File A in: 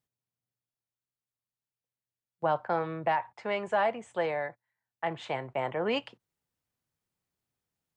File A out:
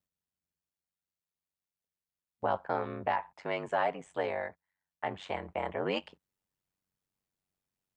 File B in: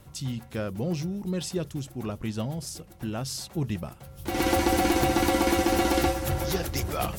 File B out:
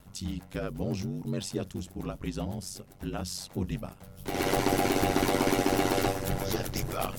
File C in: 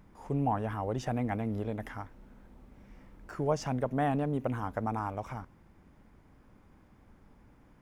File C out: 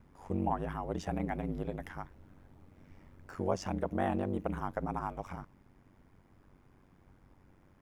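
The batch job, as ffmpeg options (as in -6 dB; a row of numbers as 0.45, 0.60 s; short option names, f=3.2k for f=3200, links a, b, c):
-af "aeval=exprs='val(0)*sin(2*PI*47*n/s)':c=same"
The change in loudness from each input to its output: -3.0, -3.0, -3.0 LU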